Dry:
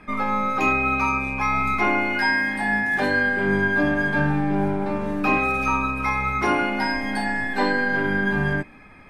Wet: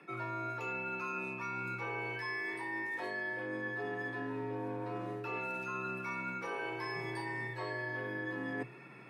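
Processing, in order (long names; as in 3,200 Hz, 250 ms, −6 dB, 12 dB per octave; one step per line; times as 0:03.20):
reversed playback
downward compressor 10 to 1, threshold −30 dBFS, peak gain reduction 14.5 dB
reversed playback
frequency shifter +120 Hz
level −6 dB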